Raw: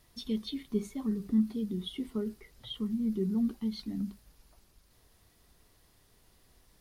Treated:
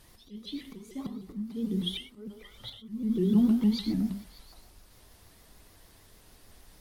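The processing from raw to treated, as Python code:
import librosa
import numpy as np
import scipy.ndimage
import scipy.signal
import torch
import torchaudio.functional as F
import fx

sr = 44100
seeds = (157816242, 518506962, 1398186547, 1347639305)

y = fx.echo_stepped(x, sr, ms=145, hz=740.0, octaves=0.7, feedback_pct=70, wet_db=-8.5)
y = fx.auto_swell(y, sr, attack_ms=586.0)
y = fx.rev_gated(y, sr, seeds[0], gate_ms=140, shape='flat', drr_db=4.5)
y = fx.vibrato_shape(y, sr, shape='saw_up', rate_hz=6.6, depth_cents=160.0)
y = y * 10.0 ** (6.5 / 20.0)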